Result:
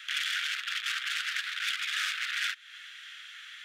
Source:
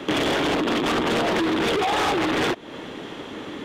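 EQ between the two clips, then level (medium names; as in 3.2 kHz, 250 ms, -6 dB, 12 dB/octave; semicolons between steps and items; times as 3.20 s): steep high-pass 1.4 kHz 72 dB/octave; -3.5 dB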